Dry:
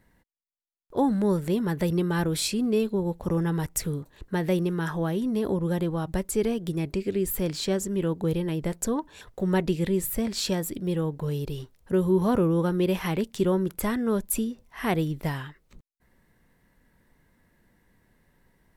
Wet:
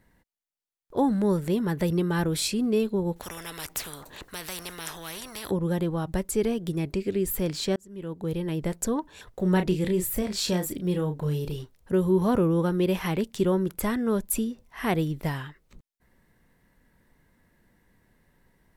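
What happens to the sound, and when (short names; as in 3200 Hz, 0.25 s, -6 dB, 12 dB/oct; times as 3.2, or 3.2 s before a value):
3.16–5.51 spectral compressor 4:1
7.76–8.59 fade in
9.41–11.56 doubler 33 ms -7.5 dB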